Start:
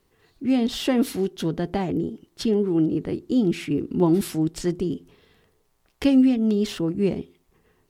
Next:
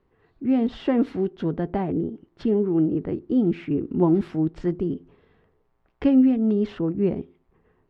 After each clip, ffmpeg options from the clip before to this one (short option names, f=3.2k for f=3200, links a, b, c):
-af "lowpass=1.7k"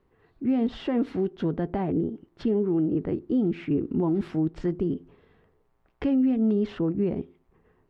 -af "alimiter=limit=-17dB:level=0:latency=1:release=129"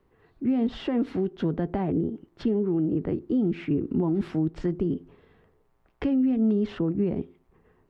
-filter_complex "[0:a]acrossover=split=230[a][b];[b]acompressor=threshold=-27dB:ratio=6[c];[a][c]amix=inputs=2:normalize=0,volume=1.5dB"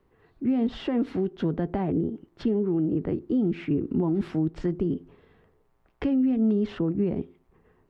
-af anull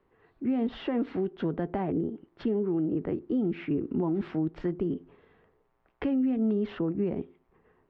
-af "lowpass=3.1k,lowshelf=f=230:g=-8"